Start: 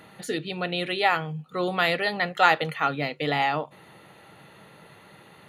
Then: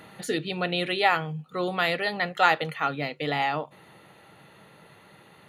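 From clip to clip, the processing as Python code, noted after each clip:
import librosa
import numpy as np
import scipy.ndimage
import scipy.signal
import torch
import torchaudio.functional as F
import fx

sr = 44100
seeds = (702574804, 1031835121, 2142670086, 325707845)

y = fx.rider(x, sr, range_db=4, speed_s=2.0)
y = y * 10.0 ** (-1.5 / 20.0)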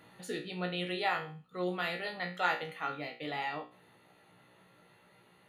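y = fx.comb_fb(x, sr, f0_hz=60.0, decay_s=0.35, harmonics='all', damping=0.0, mix_pct=90)
y = y * 10.0 ** (-2.5 / 20.0)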